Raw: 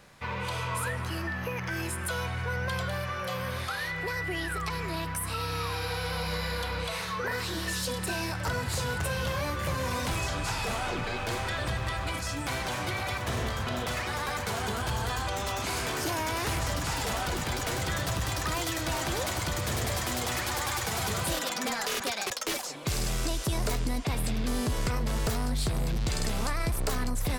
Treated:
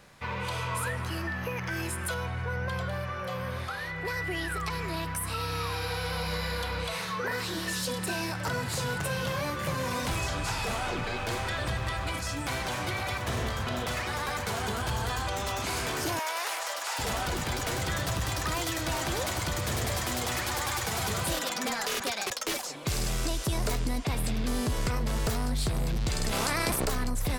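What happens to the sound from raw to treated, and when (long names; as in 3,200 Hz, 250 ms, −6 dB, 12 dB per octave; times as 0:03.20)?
0:02.14–0:04.05: high-shelf EQ 2,300 Hz −7.5 dB
0:06.94–0:10.05: low shelf with overshoot 100 Hz −7.5 dB, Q 1.5
0:16.19–0:16.99: high-pass filter 560 Hz 24 dB per octave
0:26.31–0:26.84: ceiling on every frequency bin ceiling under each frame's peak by 19 dB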